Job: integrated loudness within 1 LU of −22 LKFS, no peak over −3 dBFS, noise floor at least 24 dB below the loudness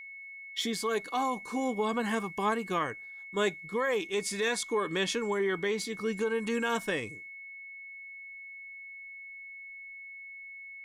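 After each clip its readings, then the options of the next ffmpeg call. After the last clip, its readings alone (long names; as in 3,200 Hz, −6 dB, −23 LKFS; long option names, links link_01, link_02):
interfering tone 2,200 Hz; level of the tone −43 dBFS; integrated loudness −31.5 LKFS; sample peak −18.0 dBFS; target loudness −22.0 LKFS
→ -af "bandreject=frequency=2200:width=30"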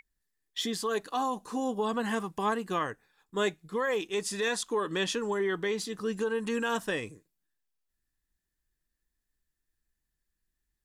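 interfering tone none found; integrated loudness −31.5 LKFS; sample peak −18.5 dBFS; target loudness −22.0 LKFS
→ -af "volume=9.5dB"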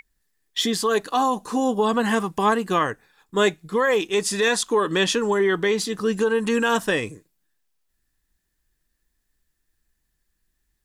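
integrated loudness −22.0 LKFS; sample peak −9.0 dBFS; background noise floor −75 dBFS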